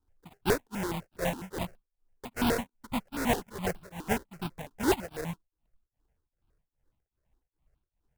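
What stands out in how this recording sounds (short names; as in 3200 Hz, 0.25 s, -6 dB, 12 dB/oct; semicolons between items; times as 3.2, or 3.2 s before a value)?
a buzz of ramps at a fixed pitch in blocks of 16 samples; tremolo triangle 2.5 Hz, depth 100%; aliases and images of a low sample rate 1200 Hz, jitter 20%; notches that jump at a steady rate 12 Hz 580–1900 Hz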